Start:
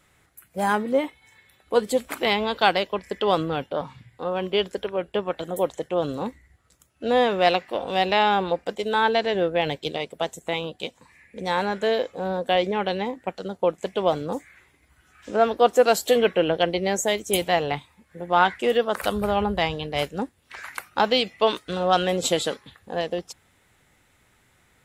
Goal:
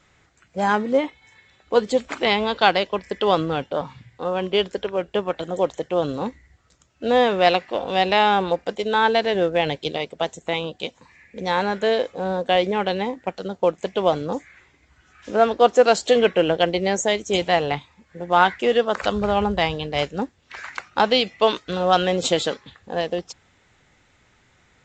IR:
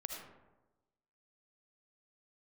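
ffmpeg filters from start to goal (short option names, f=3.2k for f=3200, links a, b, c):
-af "volume=2.5dB" -ar 16000 -c:a pcm_alaw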